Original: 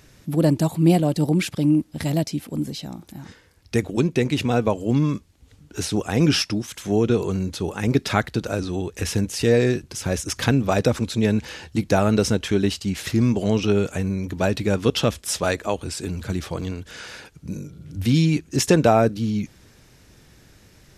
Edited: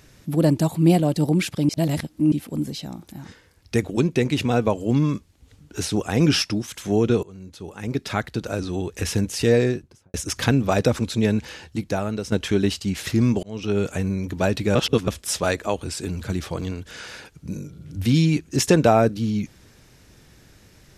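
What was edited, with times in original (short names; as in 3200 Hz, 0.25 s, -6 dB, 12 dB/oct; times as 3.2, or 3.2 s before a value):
1.69–2.32 reverse
7.23–8.84 fade in, from -22.5 dB
9.51–10.14 studio fade out
11.2–12.32 fade out, to -12 dB
13.43–13.87 fade in
14.75–15.08 reverse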